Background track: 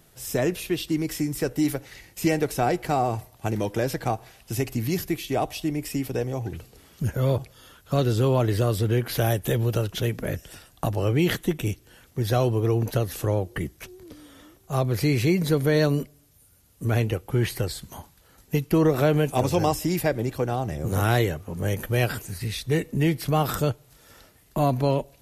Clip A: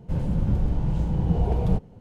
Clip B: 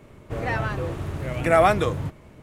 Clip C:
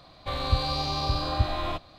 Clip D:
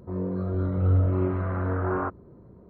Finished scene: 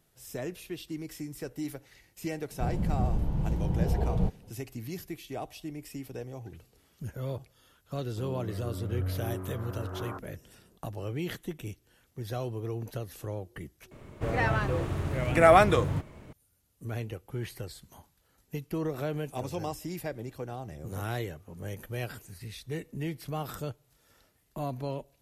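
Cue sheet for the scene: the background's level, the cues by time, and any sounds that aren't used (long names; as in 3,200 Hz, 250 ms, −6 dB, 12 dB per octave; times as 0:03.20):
background track −12.5 dB
0:02.51: mix in A −5 dB
0:08.09: mix in D −11.5 dB
0:13.91: overwrite with B −1 dB
not used: C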